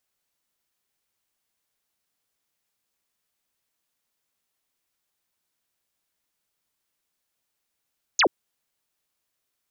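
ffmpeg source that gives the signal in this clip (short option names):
-f lavfi -i "aevalsrc='0.168*clip(t/0.002,0,1)*clip((0.08-t)/0.002,0,1)*sin(2*PI*7300*0.08/log(270/7300)*(exp(log(270/7300)*t/0.08)-1))':d=0.08:s=44100"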